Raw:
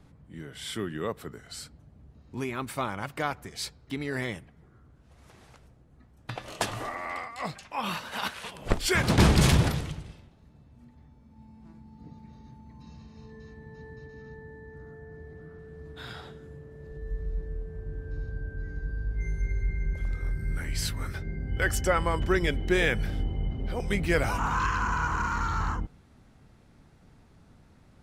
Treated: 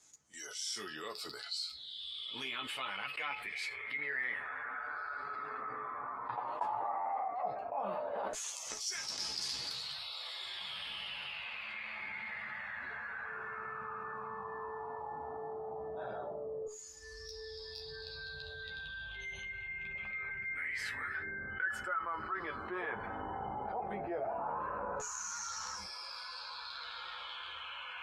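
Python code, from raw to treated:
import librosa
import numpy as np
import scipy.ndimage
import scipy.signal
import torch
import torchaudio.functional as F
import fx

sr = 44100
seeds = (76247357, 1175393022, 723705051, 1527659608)

y = fx.peak_eq(x, sr, hz=4000.0, db=-4.5, octaves=2.3)
y = fx.dmg_crackle(y, sr, seeds[0], per_s=11.0, level_db=-42.0)
y = fx.rider(y, sr, range_db=4, speed_s=0.5)
y = fx.dynamic_eq(y, sr, hz=3100.0, q=0.8, threshold_db=-48.0, ratio=4.0, max_db=-3)
y = fx.echo_diffused(y, sr, ms=1627, feedback_pct=64, wet_db=-15.5)
y = fx.filter_lfo_bandpass(y, sr, shape='saw_down', hz=0.12, low_hz=550.0, high_hz=6800.0, q=7.3)
y = fx.noise_reduce_blind(y, sr, reduce_db=16)
y = fx.chorus_voices(y, sr, voices=6, hz=0.13, base_ms=12, depth_ms=3.6, mix_pct=45)
y = fx.comb_fb(y, sr, f0_hz=430.0, decay_s=0.18, harmonics='all', damping=0.0, mix_pct=60)
y = fx.env_flatten(y, sr, amount_pct=70)
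y = y * 10.0 ** (6.5 / 20.0)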